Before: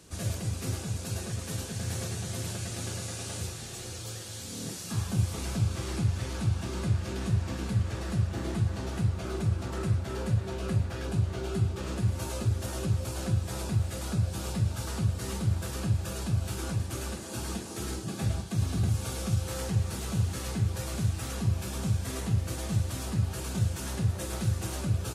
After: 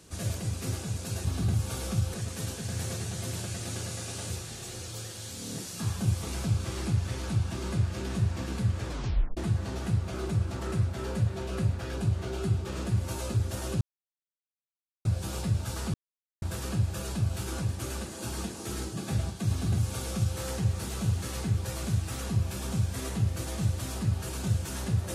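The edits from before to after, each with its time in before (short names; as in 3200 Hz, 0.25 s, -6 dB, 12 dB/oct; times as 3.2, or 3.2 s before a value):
7.98 tape stop 0.50 s
12.92–14.16 mute
15.05–15.53 mute
18.6–19.49 copy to 1.25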